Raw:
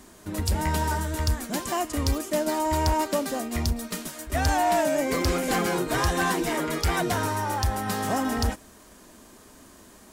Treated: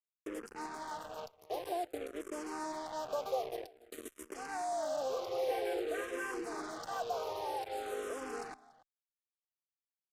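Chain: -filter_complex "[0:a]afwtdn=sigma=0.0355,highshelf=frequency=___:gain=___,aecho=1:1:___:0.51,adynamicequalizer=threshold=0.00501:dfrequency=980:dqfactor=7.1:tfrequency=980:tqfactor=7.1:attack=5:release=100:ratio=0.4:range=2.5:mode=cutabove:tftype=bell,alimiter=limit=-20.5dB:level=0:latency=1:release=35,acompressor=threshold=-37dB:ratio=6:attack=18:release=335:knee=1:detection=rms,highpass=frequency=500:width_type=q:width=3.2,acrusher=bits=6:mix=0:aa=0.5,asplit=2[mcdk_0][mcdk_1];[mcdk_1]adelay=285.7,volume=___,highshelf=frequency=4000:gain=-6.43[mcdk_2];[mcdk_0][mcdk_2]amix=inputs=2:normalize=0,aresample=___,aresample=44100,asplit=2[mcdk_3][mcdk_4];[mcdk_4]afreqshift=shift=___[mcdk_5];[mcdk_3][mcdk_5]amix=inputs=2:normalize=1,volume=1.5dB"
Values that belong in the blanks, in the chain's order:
2200, 3.5, 2.6, -20dB, 32000, -0.51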